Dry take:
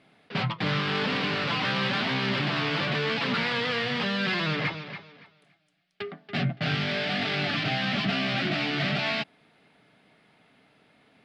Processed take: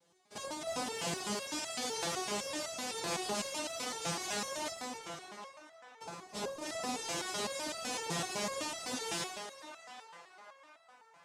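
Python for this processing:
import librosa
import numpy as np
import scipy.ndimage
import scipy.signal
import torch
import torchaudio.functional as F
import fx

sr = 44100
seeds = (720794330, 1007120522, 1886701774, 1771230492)

p1 = fx.rev_spring(x, sr, rt60_s=2.0, pass_ms=(47,), chirp_ms=50, drr_db=3.5)
p2 = fx.noise_vocoder(p1, sr, seeds[0], bands=2)
p3 = p2 + fx.echo_banded(p2, sr, ms=774, feedback_pct=60, hz=1200.0, wet_db=-9, dry=0)
p4 = fx.resonator_held(p3, sr, hz=7.9, low_hz=170.0, high_hz=660.0)
y = F.gain(torch.from_numpy(p4), 2.0).numpy()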